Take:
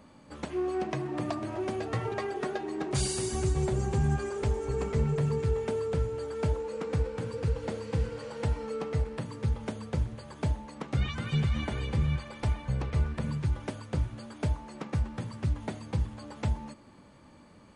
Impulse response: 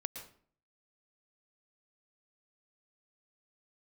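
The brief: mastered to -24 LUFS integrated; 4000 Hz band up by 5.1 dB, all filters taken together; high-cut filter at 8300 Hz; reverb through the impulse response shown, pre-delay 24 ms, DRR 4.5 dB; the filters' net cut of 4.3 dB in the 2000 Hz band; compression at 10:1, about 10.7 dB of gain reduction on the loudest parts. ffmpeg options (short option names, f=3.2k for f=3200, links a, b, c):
-filter_complex "[0:a]lowpass=8.3k,equalizer=f=2k:t=o:g=-8,equalizer=f=4k:t=o:g=9,acompressor=threshold=-34dB:ratio=10,asplit=2[a][b];[1:a]atrim=start_sample=2205,adelay=24[c];[b][c]afir=irnorm=-1:irlink=0,volume=-3.5dB[d];[a][d]amix=inputs=2:normalize=0,volume=14.5dB"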